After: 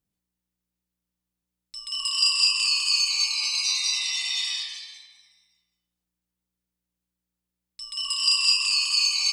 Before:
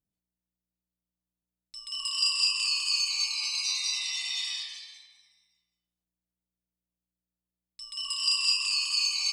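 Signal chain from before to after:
notch filter 650 Hz, Q 14
level +5 dB

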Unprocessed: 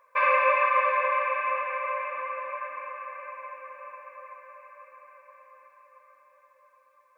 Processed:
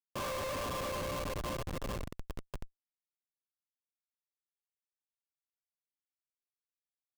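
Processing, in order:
drawn EQ curve 320 Hz 0 dB, 1,100 Hz −7 dB, 2,100 Hz −14 dB, 4,300 Hz −9 dB
comparator with hysteresis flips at −32 dBFS

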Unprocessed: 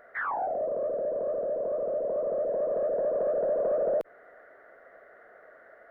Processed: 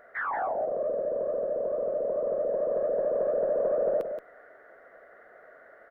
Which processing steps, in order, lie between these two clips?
single-tap delay 177 ms −8 dB

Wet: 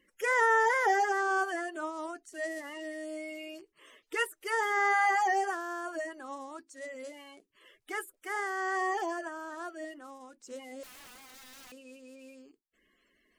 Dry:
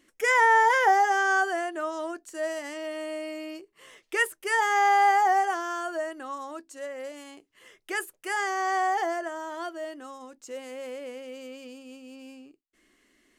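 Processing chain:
spectral magnitudes quantised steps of 30 dB
0:10.83–0:11.72: wrap-around overflow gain 42 dB
level −5 dB

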